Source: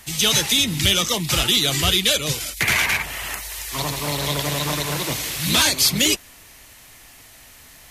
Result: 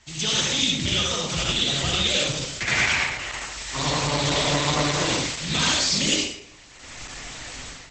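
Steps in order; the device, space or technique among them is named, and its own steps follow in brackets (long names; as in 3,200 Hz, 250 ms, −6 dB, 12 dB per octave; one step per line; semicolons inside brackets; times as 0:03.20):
speakerphone in a meeting room (convolution reverb RT60 0.70 s, pre-delay 59 ms, DRR −3 dB; automatic gain control gain up to 15.5 dB; level −7.5 dB; Opus 12 kbit/s 48,000 Hz)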